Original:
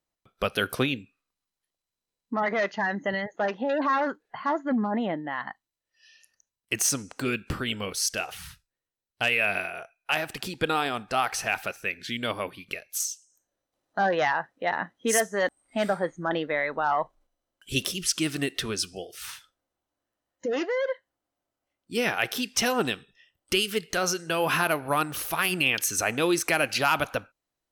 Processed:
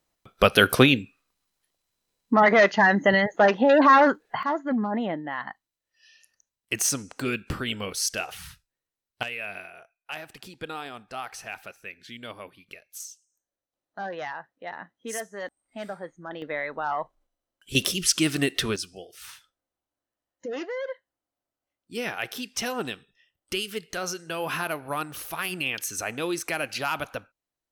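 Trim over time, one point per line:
+9 dB
from 4.43 s 0 dB
from 9.23 s -10 dB
from 16.42 s -3.5 dB
from 17.75 s +4 dB
from 18.76 s -5 dB

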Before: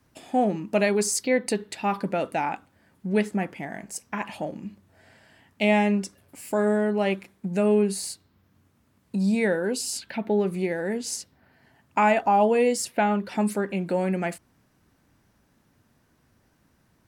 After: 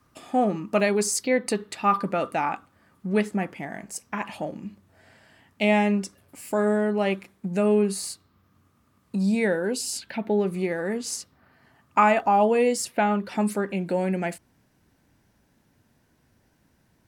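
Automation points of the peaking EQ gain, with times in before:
peaking EQ 1.2 kHz 0.21 oct
+14.5 dB
from 0.80 s +3.5 dB
from 1.46 s +13 dB
from 3.20 s +4 dB
from 7.85 s +11.5 dB
from 9.23 s +0.5 dB
from 10.56 s +12 dB
from 12.20 s +3.5 dB
from 13.73 s -6.5 dB

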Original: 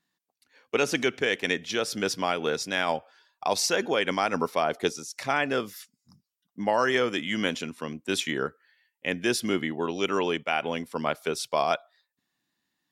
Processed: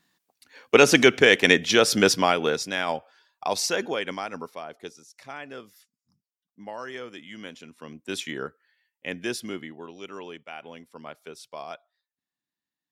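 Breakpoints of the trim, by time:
2.02 s +9.5 dB
2.77 s -0.5 dB
3.78 s -0.5 dB
4.67 s -13 dB
7.58 s -13 dB
8.03 s -4 dB
9.27 s -4 dB
9.92 s -13 dB

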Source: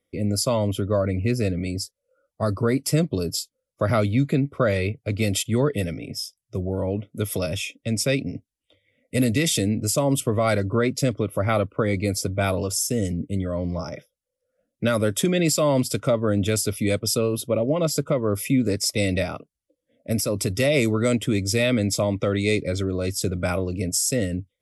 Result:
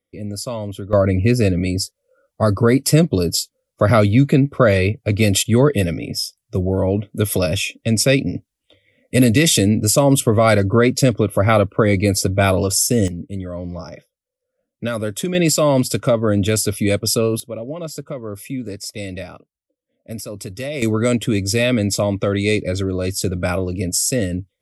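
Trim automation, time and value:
-4 dB
from 0.93 s +7.5 dB
from 13.08 s -1.5 dB
from 15.35 s +5 dB
from 17.40 s -6 dB
from 20.82 s +4 dB

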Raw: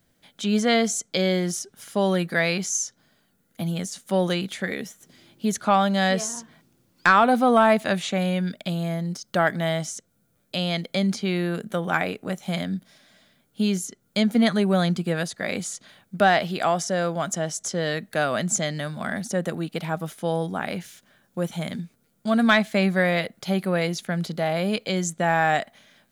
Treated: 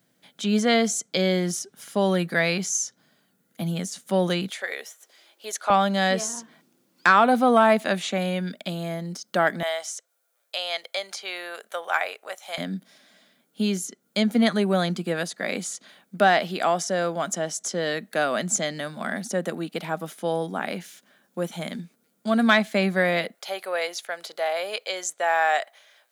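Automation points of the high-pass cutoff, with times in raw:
high-pass 24 dB/octave
130 Hz
from 4.50 s 500 Hz
from 5.70 s 190 Hz
from 9.63 s 580 Hz
from 12.58 s 190 Hz
from 23.35 s 500 Hz

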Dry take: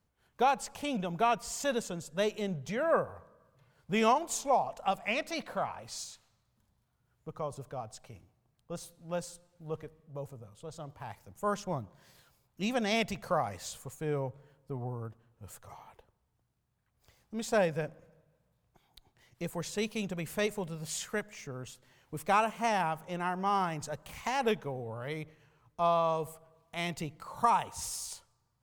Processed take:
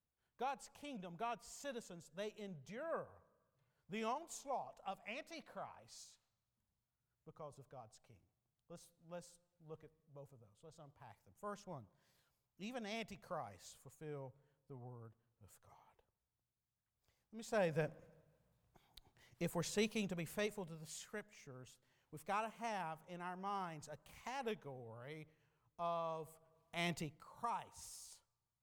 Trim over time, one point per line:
17.36 s -16 dB
17.80 s -4 dB
19.81 s -4 dB
20.95 s -14 dB
26.28 s -14 dB
26.91 s -4 dB
27.31 s -16 dB

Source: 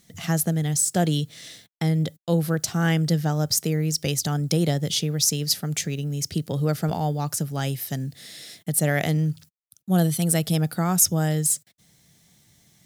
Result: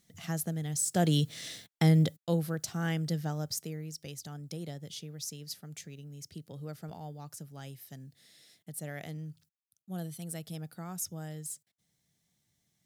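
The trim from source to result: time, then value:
0.69 s -11 dB
1.28 s -0.5 dB
1.98 s -0.5 dB
2.51 s -10.5 dB
3.31 s -10.5 dB
3.98 s -18.5 dB

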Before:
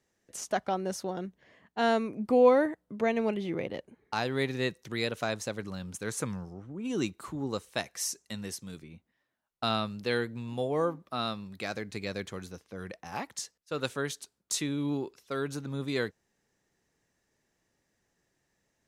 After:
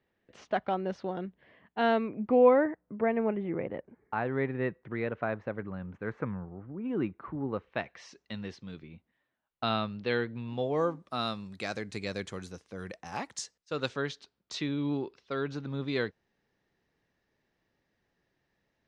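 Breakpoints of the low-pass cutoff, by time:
low-pass 24 dB/octave
1.93 s 3.5 kHz
2.88 s 2 kHz
7.43 s 2 kHz
8.19 s 3.8 kHz
10.46 s 3.8 kHz
11.04 s 9.3 kHz
13.25 s 9.3 kHz
14.21 s 4.5 kHz

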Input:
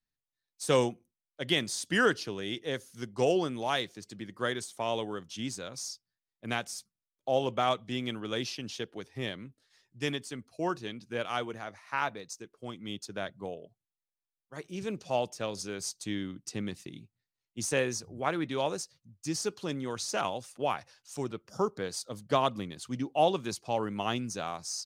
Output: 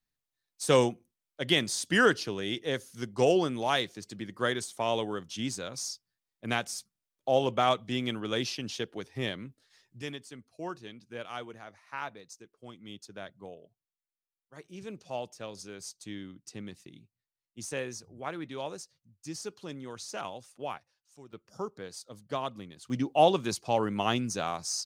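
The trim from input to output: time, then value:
+2.5 dB
from 10.02 s -6.5 dB
from 20.78 s -17 dB
from 21.33 s -7 dB
from 22.90 s +3.5 dB

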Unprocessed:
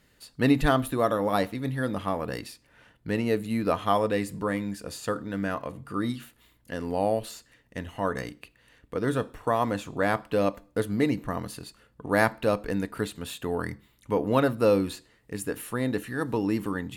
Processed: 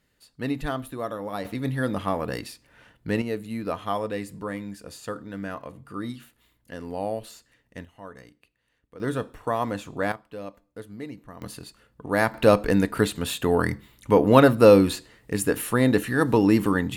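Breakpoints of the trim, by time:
-7 dB
from 1.45 s +2.5 dB
from 3.22 s -4 dB
from 7.85 s -14 dB
from 9.00 s -1 dB
from 10.12 s -12.5 dB
from 11.42 s 0 dB
from 12.34 s +8 dB

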